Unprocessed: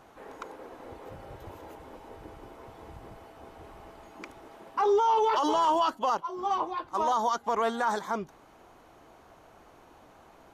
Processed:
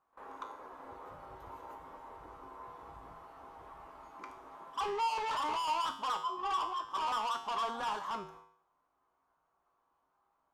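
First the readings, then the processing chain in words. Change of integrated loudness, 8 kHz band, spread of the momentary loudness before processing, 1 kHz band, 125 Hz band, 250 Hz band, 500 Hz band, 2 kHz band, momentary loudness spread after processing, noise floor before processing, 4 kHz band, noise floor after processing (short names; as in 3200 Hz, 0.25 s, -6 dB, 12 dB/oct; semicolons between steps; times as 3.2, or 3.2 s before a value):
-8.0 dB, -5.5 dB, 22 LU, -7.0 dB, n/a, -14.5 dB, -14.5 dB, -4.5 dB, 19 LU, -56 dBFS, -1.0 dB, -79 dBFS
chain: bell 1100 Hz +14.5 dB 1 oct; soft clip -22 dBFS, distortion -6 dB; gate with hold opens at -35 dBFS; resonator 54 Hz, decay 0.6 s, harmonics odd, mix 80%; pre-echo 45 ms -21 dB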